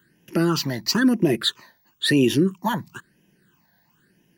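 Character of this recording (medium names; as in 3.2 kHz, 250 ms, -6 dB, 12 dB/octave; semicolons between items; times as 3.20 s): phasing stages 8, 1 Hz, lowest notch 360–1300 Hz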